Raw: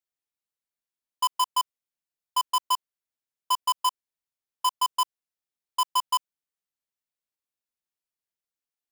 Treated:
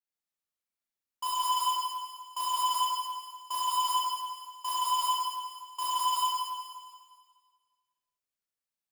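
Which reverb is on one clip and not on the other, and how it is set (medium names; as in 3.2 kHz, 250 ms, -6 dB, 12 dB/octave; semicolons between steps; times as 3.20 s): Schroeder reverb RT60 1.7 s, combs from 27 ms, DRR -9.5 dB; trim -11 dB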